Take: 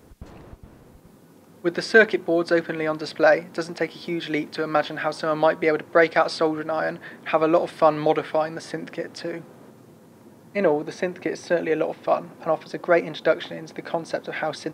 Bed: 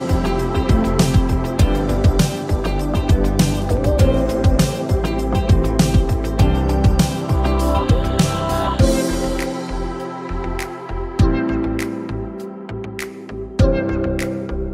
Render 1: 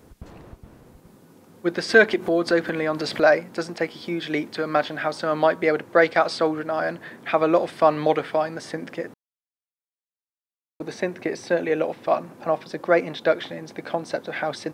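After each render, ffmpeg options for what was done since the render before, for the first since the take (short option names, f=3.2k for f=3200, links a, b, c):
-filter_complex "[0:a]asplit=3[a][b][c];[a]afade=t=out:st=1.88:d=0.02[d];[b]acompressor=mode=upward:threshold=-19dB:ratio=2.5:attack=3.2:release=140:knee=2.83:detection=peak,afade=t=in:st=1.88:d=0.02,afade=t=out:st=3.32:d=0.02[e];[c]afade=t=in:st=3.32:d=0.02[f];[d][e][f]amix=inputs=3:normalize=0,asplit=3[g][h][i];[g]atrim=end=9.14,asetpts=PTS-STARTPTS,afade=t=out:st=9.136:d=0.004:c=hsin[j];[h]atrim=start=9.14:end=10.8,asetpts=PTS-STARTPTS,volume=0[k];[i]atrim=start=10.8,asetpts=PTS-STARTPTS,afade=t=in:d=0.004:c=hsin[l];[j][k][l]concat=n=3:v=0:a=1"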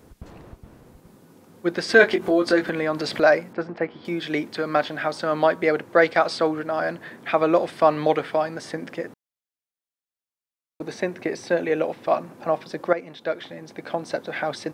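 -filter_complex "[0:a]asettb=1/sr,asplit=3[a][b][c];[a]atrim=end=1.974[d];[b]atrim=start=1.97:end=2.7,asetpts=PTS-STARTPTS,afade=t=in:d=0.004:c=qsin,afade=t=out:st=0.726:d=0.004:c=qsin,asplit=2[e][f];[f]adelay=21,volume=-6dB[g];[e][g]amix=inputs=2:normalize=0,atrim=end_sample=32193[h];[c]atrim=start=2.696[i];[d][h]acrossfade=d=0.004:c1=hsin:c2=qsin[j];[j][i]acrossfade=d=0.004:c1=qsin:c2=hsin,asettb=1/sr,asplit=3[k][l][m];[k]atrim=end=3.534[n];[l]atrim=start=3.53:end=4.05,asetpts=PTS-STARTPTS,afade=t=in:d=0.004:c=qsin,afade=t=out:st=0.516:d=0.004:c=qsin,lowpass=1.9k[o];[m]atrim=start=4.046[p];[n][o]acrossfade=d=0.004:c1=hsin:c2=qsin[q];[q][p]acrossfade=d=0.004:c1=qsin:c2=hsin,asplit=2[r][s];[r]atrim=end=12.93,asetpts=PTS-STARTPTS,afade=t=out:st=12.926:d=0.004:c=hsin:silence=0.237137[t];[s]atrim=start=12.93,asetpts=PTS-STARTPTS,afade=t=in:d=1.18:silence=0.237137[u];[t][u]concat=n=2:v=0:a=1"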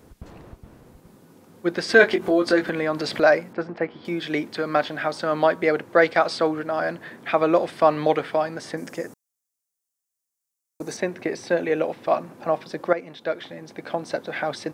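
-filter_complex "[0:a]asettb=1/sr,asplit=3[a][b][c];[a]atrim=end=8.774[d];[b]atrim=start=8.77:end=10.97,asetpts=PTS-STARTPTS,afade=t=in:d=0.004:c=qsin,afade=t=out:st=2.196:d=0.004:c=qsin,highshelf=f=4.9k:t=q:w=1.5:g=10[e];[c]atrim=start=10.966[f];[d][e]acrossfade=d=0.004:c1=hsin:c2=qsin[g];[g][f]acrossfade=d=0.004:c1=qsin:c2=hsin"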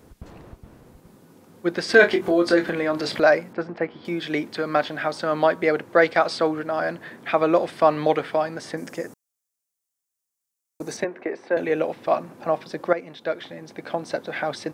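-filter_complex "[0:a]asettb=1/sr,asplit=3[a][b][c];[a]atrim=end=1.914[d];[b]atrim=start=1.91:end=3.19,asetpts=PTS-STARTPTS,afade=t=in:d=0.004:c=qsin,afade=t=out:st=1.276:d=0.004:c=qsin,asplit=2[e][f];[f]adelay=29,volume=-10dB[g];[e][g]amix=inputs=2:normalize=0,atrim=end_sample=56448[h];[c]atrim=start=3.186[i];[d][h]acrossfade=d=0.004:c1=hsin:c2=qsin[j];[j][i]acrossfade=d=0.004:c1=qsin:c2=hsin,asettb=1/sr,asplit=3[k][l][m];[k]atrim=end=11.044[n];[l]atrim=start=11.04:end=11.57,asetpts=PTS-STARTPTS,afade=t=in:d=0.004:c=qsin,afade=t=out:st=0.526:d=0.004:c=qsin,acrossover=split=260 2400:gain=0.1 1 0.112[o][p][q];[o][p][q]amix=inputs=3:normalize=0[r];[m]atrim=start=11.566[s];[n][r]acrossfade=d=0.004:c1=hsin:c2=qsin[t];[t][s]acrossfade=d=0.004:c1=qsin:c2=hsin"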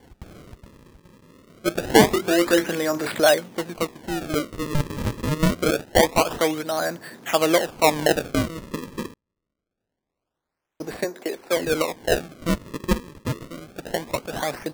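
-af "acrusher=samples=34:mix=1:aa=0.000001:lfo=1:lforange=54.4:lforate=0.25"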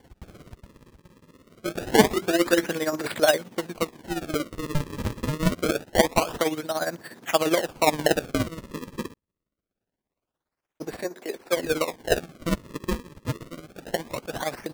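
-af "tremolo=f=17:d=0.69"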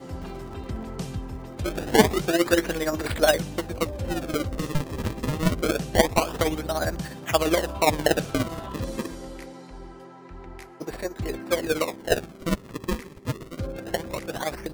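-filter_complex "[1:a]volume=-18dB[a];[0:a][a]amix=inputs=2:normalize=0"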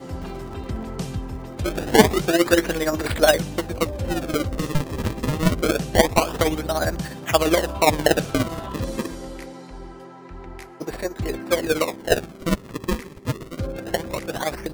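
-af "volume=3.5dB,alimiter=limit=-1dB:level=0:latency=1"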